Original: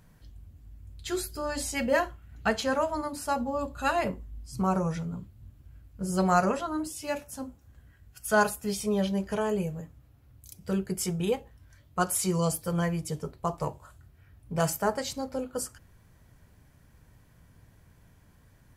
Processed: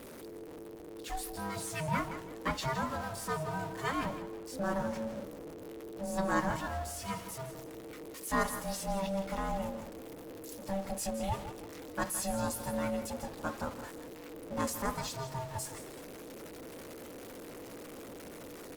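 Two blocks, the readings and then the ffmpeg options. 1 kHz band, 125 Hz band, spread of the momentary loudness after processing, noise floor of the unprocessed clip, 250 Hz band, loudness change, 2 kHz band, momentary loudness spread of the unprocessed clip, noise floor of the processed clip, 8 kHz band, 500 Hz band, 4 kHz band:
-5.0 dB, -7.0 dB, 13 LU, -59 dBFS, -6.5 dB, -8.0 dB, -5.5 dB, 12 LU, -48 dBFS, -5.0 dB, -7.0 dB, -5.0 dB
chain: -filter_complex "[0:a]aeval=exprs='val(0)+0.5*0.0211*sgn(val(0))':c=same,asplit=2[a][b];[b]aecho=0:1:164|328|492:0.251|0.0728|0.0211[c];[a][c]amix=inputs=2:normalize=0,aeval=exprs='val(0)*sin(2*PI*390*n/s)':c=same,asplit=2[d][e];[e]asplit=5[f][g][h][i][j];[f]adelay=188,afreqshift=-130,volume=-22dB[k];[g]adelay=376,afreqshift=-260,volume=-26.4dB[l];[h]adelay=564,afreqshift=-390,volume=-30.9dB[m];[i]adelay=752,afreqshift=-520,volume=-35.3dB[n];[j]adelay=940,afreqshift=-650,volume=-39.7dB[o];[k][l][m][n][o]amix=inputs=5:normalize=0[p];[d][p]amix=inputs=2:normalize=0,volume=-5.5dB" -ar 48000 -c:a libopus -b:a 32k

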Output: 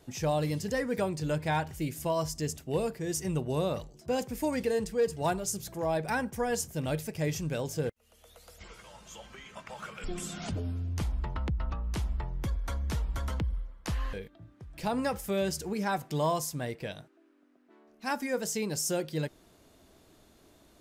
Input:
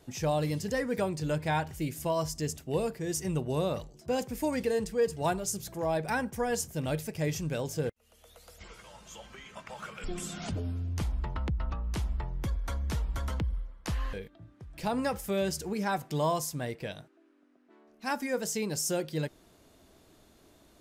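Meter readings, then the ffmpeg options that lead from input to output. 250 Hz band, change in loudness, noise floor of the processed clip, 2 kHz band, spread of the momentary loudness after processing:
0.0 dB, 0.0 dB, -62 dBFS, 0.0 dB, 13 LU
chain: -af "asoftclip=type=hard:threshold=-20dB"

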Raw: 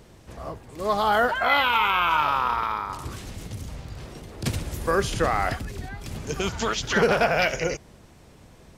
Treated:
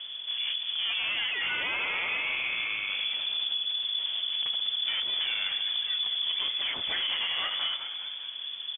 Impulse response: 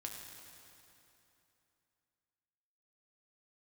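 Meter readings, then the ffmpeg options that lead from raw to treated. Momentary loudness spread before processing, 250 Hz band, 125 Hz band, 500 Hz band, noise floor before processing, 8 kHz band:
18 LU, under -20 dB, under -25 dB, -24.0 dB, -51 dBFS, under -40 dB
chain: -filter_complex "[0:a]lowshelf=f=320:g=10.5,acompressor=threshold=-29dB:ratio=4,asoftclip=type=hard:threshold=-31.5dB,asplit=9[a][b][c][d][e][f][g][h][i];[b]adelay=201,afreqshift=-93,volume=-9dB[j];[c]adelay=402,afreqshift=-186,volume=-13.3dB[k];[d]adelay=603,afreqshift=-279,volume=-17.6dB[l];[e]adelay=804,afreqshift=-372,volume=-21.9dB[m];[f]adelay=1005,afreqshift=-465,volume=-26.2dB[n];[g]adelay=1206,afreqshift=-558,volume=-30.5dB[o];[h]adelay=1407,afreqshift=-651,volume=-34.8dB[p];[i]adelay=1608,afreqshift=-744,volume=-39.1dB[q];[a][j][k][l][m][n][o][p][q]amix=inputs=9:normalize=0,lowpass=f=3k:t=q:w=0.5098,lowpass=f=3k:t=q:w=0.6013,lowpass=f=3k:t=q:w=0.9,lowpass=f=3k:t=q:w=2.563,afreqshift=-3500,volume=3dB"

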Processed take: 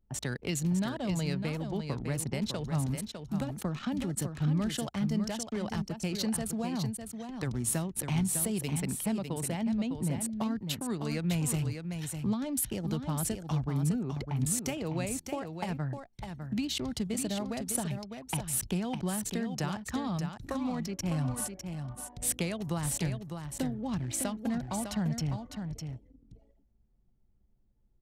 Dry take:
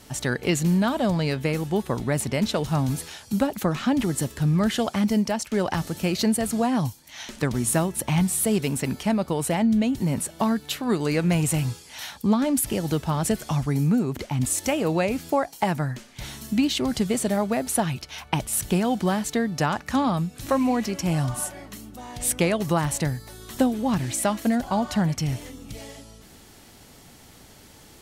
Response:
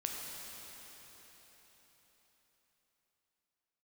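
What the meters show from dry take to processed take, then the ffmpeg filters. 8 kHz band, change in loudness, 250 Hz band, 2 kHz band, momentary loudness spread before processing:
-5.5 dB, -8.5 dB, -9.0 dB, -11.0 dB, 8 LU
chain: -filter_complex "[0:a]anlmdn=15.8,acrossover=split=190|3000[a][b][c];[b]acompressor=threshold=-31dB:ratio=3[d];[a][d][c]amix=inputs=3:normalize=0,aecho=1:1:604:0.447,volume=-6dB"

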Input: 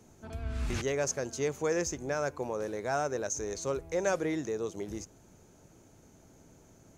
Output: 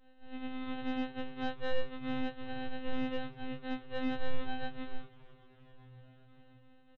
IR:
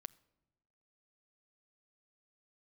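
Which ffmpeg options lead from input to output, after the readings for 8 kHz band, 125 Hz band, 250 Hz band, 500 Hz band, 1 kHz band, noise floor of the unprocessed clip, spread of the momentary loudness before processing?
under -35 dB, -9.5 dB, 0.0 dB, -10.5 dB, -5.0 dB, -59 dBFS, 10 LU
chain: -filter_complex "[0:a]equalizer=f=280:t=o:w=0.43:g=7,bandreject=f=60:t=h:w=6,bandreject=f=120:t=h:w=6,bandreject=f=180:t=h:w=6,bandreject=f=240:t=h:w=6,bandreject=f=300:t=h:w=6,bandreject=f=360:t=h:w=6,bandreject=f=420:t=h:w=6,bandreject=f=480:t=h:w=6,bandreject=f=540:t=h:w=6,aresample=8000,acrusher=samples=24:mix=1:aa=0.000001,aresample=44100,afftfilt=real='hypot(re,im)*cos(PI*b)':imag='0':win_size=2048:overlap=0.75,aeval=exprs='0.168*(cos(1*acos(clip(val(0)/0.168,-1,1)))-cos(1*PI/2))+0.00841*(cos(6*acos(clip(val(0)/0.168,-1,1)))-cos(6*PI/2))':c=same,asplit=7[a][b][c][d][e][f][g];[b]adelay=391,afreqshift=-31,volume=-18dB[h];[c]adelay=782,afreqshift=-62,volume=-22dB[i];[d]adelay=1173,afreqshift=-93,volume=-26dB[j];[e]adelay=1564,afreqshift=-124,volume=-30dB[k];[f]adelay=1955,afreqshift=-155,volume=-34.1dB[l];[g]adelay=2346,afreqshift=-186,volume=-38.1dB[m];[a][h][i][j][k][l][m]amix=inputs=7:normalize=0,afftfilt=real='re*2.45*eq(mod(b,6),0)':imag='im*2.45*eq(mod(b,6),0)':win_size=2048:overlap=0.75,volume=1.5dB"

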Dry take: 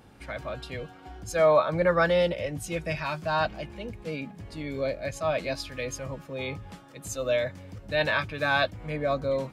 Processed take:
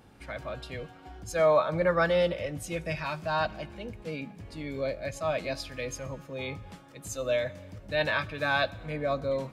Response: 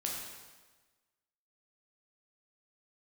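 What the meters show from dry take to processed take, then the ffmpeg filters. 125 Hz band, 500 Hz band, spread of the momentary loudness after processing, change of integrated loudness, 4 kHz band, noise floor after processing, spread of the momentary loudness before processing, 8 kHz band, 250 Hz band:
-2.5 dB, -2.0 dB, 16 LU, -2.0 dB, -2.0 dB, -52 dBFS, 16 LU, -2.0 dB, -2.0 dB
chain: -filter_complex "[0:a]asplit=2[a][b];[1:a]atrim=start_sample=2205[c];[b][c]afir=irnorm=-1:irlink=0,volume=-19.5dB[d];[a][d]amix=inputs=2:normalize=0,volume=-3dB"

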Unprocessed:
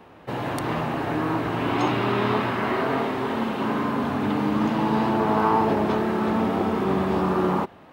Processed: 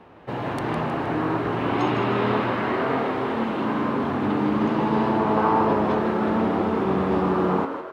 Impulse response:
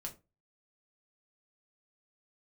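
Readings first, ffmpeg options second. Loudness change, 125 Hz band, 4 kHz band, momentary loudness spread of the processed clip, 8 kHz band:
+0.5 dB, 0.0 dB, -2.0 dB, 5 LU, n/a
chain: -filter_complex "[0:a]aemphasis=mode=reproduction:type=50kf,asplit=6[a][b][c][d][e][f];[b]adelay=157,afreqshift=92,volume=-8dB[g];[c]adelay=314,afreqshift=184,volume=-14.9dB[h];[d]adelay=471,afreqshift=276,volume=-21.9dB[i];[e]adelay=628,afreqshift=368,volume=-28.8dB[j];[f]adelay=785,afreqshift=460,volume=-35.7dB[k];[a][g][h][i][j][k]amix=inputs=6:normalize=0"

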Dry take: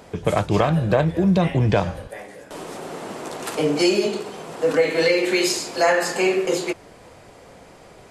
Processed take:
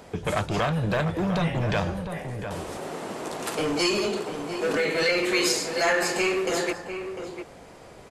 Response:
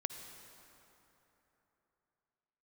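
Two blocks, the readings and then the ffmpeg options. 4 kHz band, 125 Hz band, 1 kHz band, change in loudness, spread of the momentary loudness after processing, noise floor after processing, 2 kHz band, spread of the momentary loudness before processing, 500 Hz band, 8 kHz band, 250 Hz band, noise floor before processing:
-1.5 dB, -6.0 dB, -3.5 dB, -5.5 dB, 12 LU, -47 dBFS, -1.0 dB, 16 LU, -6.0 dB, -1.5 dB, -6.0 dB, -47 dBFS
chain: -filter_complex "[0:a]acrossover=split=1100[a][b];[a]asoftclip=type=hard:threshold=-22.5dB[c];[c][b]amix=inputs=2:normalize=0,asplit=2[d][e];[e]adelay=699.7,volume=-8dB,highshelf=f=4k:g=-15.7[f];[d][f]amix=inputs=2:normalize=0,volume=-1.5dB"

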